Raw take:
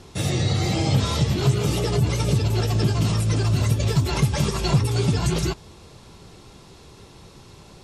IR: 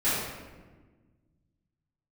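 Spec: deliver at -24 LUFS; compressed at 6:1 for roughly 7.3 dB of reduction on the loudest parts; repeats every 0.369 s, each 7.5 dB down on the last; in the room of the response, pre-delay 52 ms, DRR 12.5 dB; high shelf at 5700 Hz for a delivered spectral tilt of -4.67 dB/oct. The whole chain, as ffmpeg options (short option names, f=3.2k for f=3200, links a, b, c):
-filter_complex "[0:a]highshelf=f=5.7k:g=8.5,acompressor=threshold=-22dB:ratio=6,aecho=1:1:369|738|1107|1476|1845:0.422|0.177|0.0744|0.0312|0.0131,asplit=2[a][b];[1:a]atrim=start_sample=2205,adelay=52[c];[b][c]afir=irnorm=-1:irlink=0,volume=-25.5dB[d];[a][d]amix=inputs=2:normalize=0,volume=1.5dB"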